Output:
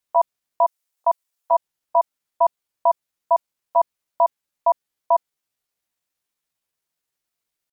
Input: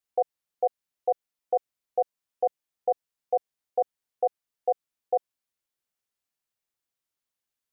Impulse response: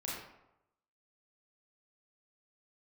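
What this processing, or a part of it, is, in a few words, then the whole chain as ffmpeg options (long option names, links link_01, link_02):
chipmunk voice: -filter_complex "[0:a]asettb=1/sr,asplit=3[link_01][link_02][link_03];[link_01]atrim=end=0.654[link_04];[link_02]atrim=start=0.65:end=1.55,asetpts=PTS-STARTPTS,afade=type=in:duration=0.004:curve=qsin,afade=type=out:start_time=0.896:duration=0.004:curve=qsin,bass=frequency=250:gain=-14,treble=frequency=4000:gain=5[link_05];[link_03]atrim=start=1.546[link_06];[link_04][link_05]acrossfade=duration=0.004:curve1=hsin:curve2=qsin[link_07];[link_07][link_06]acrossfade=duration=0.004:curve1=qsin:curve2=hsin,asetrate=58866,aresample=44100,atempo=0.749154,volume=7dB"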